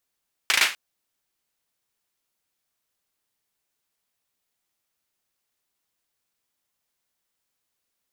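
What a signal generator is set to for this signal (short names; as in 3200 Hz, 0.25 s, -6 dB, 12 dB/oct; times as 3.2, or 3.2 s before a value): hand clap length 0.25 s, bursts 4, apart 37 ms, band 2200 Hz, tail 0.31 s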